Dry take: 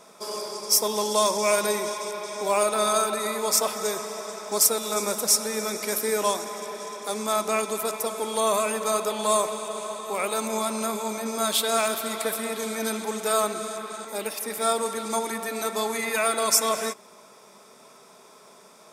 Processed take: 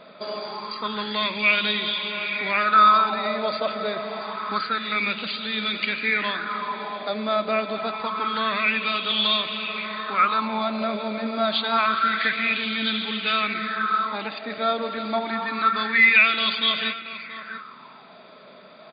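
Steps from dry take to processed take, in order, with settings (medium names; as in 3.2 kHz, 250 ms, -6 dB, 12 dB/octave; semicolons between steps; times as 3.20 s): high-order bell 620 Hz -12 dB; in parallel at -0.5 dB: compression, threshold -37 dBFS, peak gain reduction 21 dB; on the sum: brick-wall FIR low-pass 4.8 kHz; delay 679 ms -13 dB; sweeping bell 0.27 Hz 580–3200 Hz +16 dB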